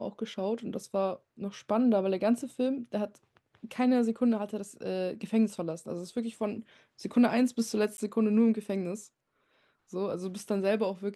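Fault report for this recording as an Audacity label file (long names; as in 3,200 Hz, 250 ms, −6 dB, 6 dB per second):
7.970000	7.980000	drop-out 11 ms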